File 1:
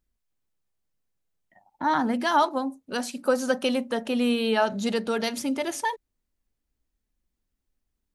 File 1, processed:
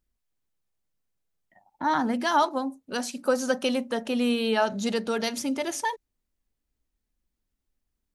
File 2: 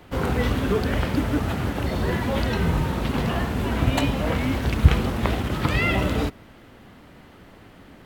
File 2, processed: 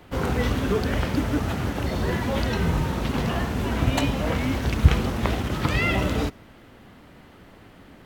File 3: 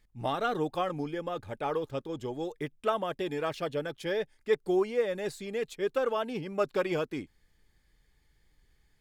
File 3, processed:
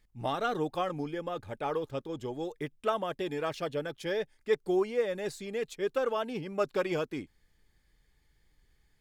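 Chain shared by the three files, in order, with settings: dynamic EQ 6000 Hz, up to +4 dB, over -52 dBFS, Q 2.1; gain -1 dB

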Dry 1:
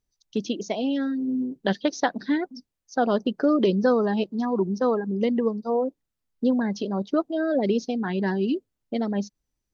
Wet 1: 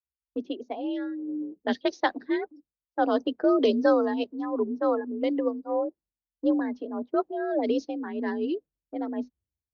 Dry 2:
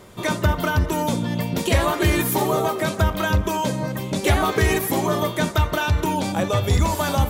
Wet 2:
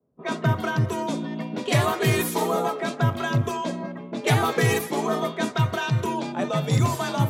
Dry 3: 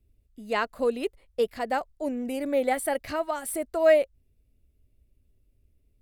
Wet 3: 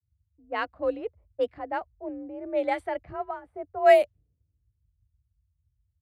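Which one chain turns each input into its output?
frequency shift +46 Hz; low-pass opened by the level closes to 460 Hz, open at -16 dBFS; three-band expander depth 70%; gain -3 dB

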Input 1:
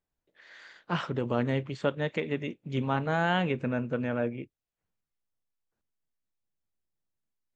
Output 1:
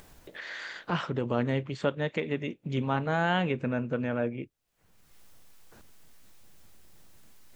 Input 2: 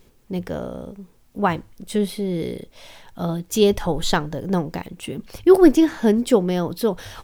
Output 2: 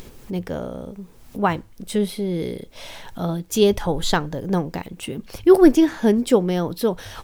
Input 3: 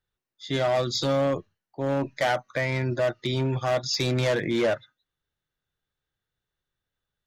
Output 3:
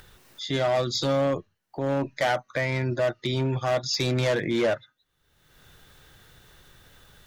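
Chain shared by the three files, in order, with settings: upward compressor, threshold -28 dBFS

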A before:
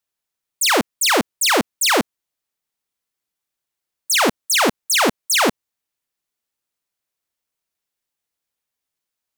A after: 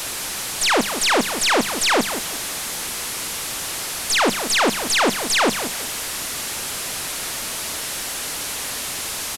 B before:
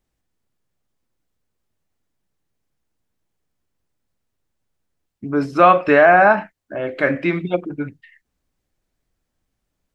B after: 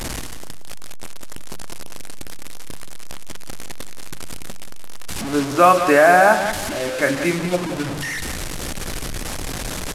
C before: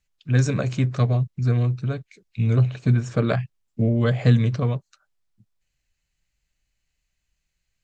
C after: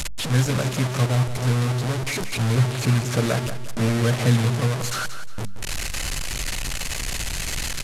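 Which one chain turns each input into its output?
delta modulation 64 kbps, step -19.5 dBFS; notches 50/100/150/200 Hz; on a send: feedback echo 0.179 s, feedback 30%, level -10.5 dB; on the sum: gain -1 dB

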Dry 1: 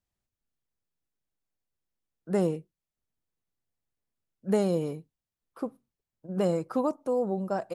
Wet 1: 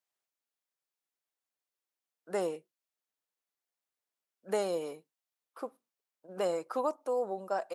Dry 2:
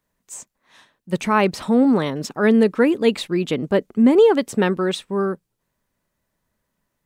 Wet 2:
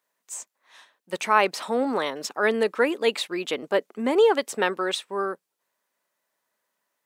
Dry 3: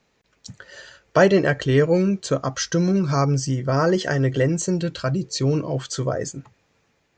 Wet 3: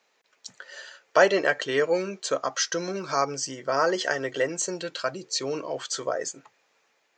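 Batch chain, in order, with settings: HPF 540 Hz 12 dB/oct

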